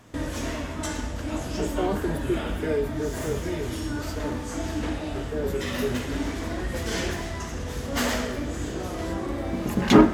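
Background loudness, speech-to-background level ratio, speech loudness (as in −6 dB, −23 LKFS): −29.0 LKFS, −3.5 dB, −32.5 LKFS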